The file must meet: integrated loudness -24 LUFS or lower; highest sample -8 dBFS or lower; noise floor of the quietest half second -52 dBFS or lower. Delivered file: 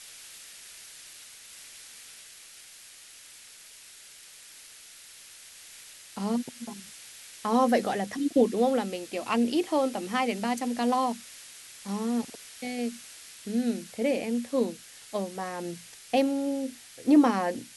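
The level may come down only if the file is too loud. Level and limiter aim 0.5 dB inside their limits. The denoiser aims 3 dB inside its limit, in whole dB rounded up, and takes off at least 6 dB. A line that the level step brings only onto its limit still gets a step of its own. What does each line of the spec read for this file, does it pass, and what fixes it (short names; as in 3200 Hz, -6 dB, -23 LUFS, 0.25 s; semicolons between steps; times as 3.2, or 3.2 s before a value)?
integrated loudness -28.5 LUFS: OK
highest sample -10.5 dBFS: OK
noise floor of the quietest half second -50 dBFS: fail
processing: denoiser 6 dB, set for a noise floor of -50 dBFS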